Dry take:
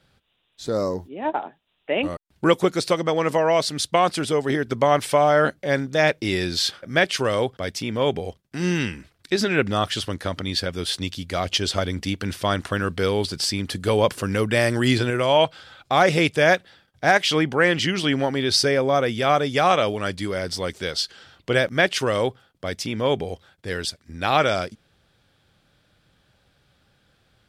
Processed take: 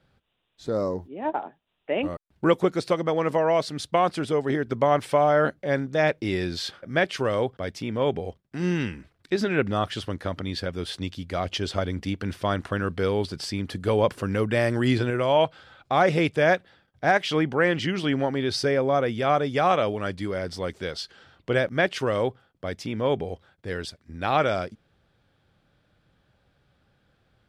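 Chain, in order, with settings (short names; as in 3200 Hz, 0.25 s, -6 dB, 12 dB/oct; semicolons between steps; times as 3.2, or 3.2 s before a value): high shelf 3000 Hz -11 dB; gain -2 dB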